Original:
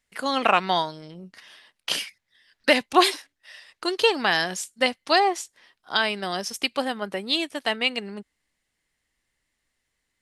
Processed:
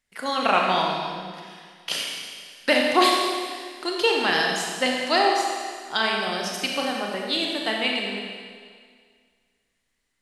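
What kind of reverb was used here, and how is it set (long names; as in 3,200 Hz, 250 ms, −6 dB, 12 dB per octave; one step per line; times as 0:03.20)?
four-comb reverb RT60 1.9 s, combs from 28 ms, DRR −1 dB
level −2.5 dB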